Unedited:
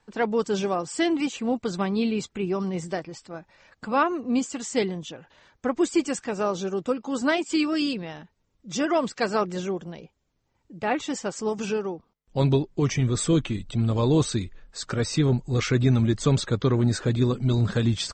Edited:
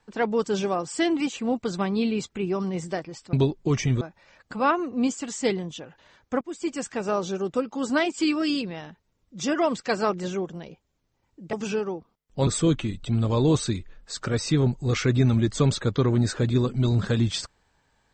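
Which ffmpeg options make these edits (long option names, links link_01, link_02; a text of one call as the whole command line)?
ffmpeg -i in.wav -filter_complex "[0:a]asplit=6[link_01][link_02][link_03][link_04][link_05][link_06];[link_01]atrim=end=3.332[link_07];[link_02]atrim=start=12.448:end=13.132[link_08];[link_03]atrim=start=3.328:end=5.73,asetpts=PTS-STARTPTS,afade=type=out:start_time=2.398:duration=0.004:curve=hsin:silence=0.0749894[link_09];[link_04]atrim=start=5.73:end=10.852,asetpts=PTS-STARTPTS,afade=type=in:duration=0.55:silence=0.0749894[link_10];[link_05]atrim=start=11.508:end=12.452[link_11];[link_06]atrim=start=13.128[link_12];[link_07][link_08]acrossfade=duration=0.004:curve1=hsin:curve2=hsin[link_13];[link_09][link_10]concat=n=2:v=0:a=1[link_14];[link_13][link_14]acrossfade=duration=0.004:curve1=hsin:curve2=hsin[link_15];[link_15][link_11]acrossfade=duration=0.004:curve1=hsin:curve2=hsin[link_16];[link_16][link_12]acrossfade=duration=0.004:curve1=hsin:curve2=hsin" out.wav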